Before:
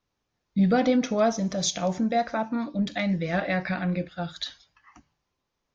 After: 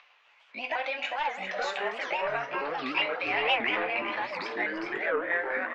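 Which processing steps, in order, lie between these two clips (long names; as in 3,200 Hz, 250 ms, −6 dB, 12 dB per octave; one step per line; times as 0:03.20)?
pitch shifter swept by a sawtooth +5.5 semitones, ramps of 754 ms
high-pass filter 670 Hz 24 dB per octave
in parallel at −0.5 dB: upward compression, threshold −31 dBFS
on the sum: leveller curve on the samples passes 1
downward compressor 2 to 1, threshold −25 dBFS, peak gain reduction 6.5 dB
low-pass with resonance 2,600 Hz, resonance Q 3.3
delay with pitch and tempo change per echo 635 ms, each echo −5 semitones, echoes 3
single-tap delay 402 ms −8 dB
convolution reverb RT60 0.30 s, pre-delay 6 ms, DRR 7 dB
wow of a warped record 78 rpm, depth 250 cents
level −9 dB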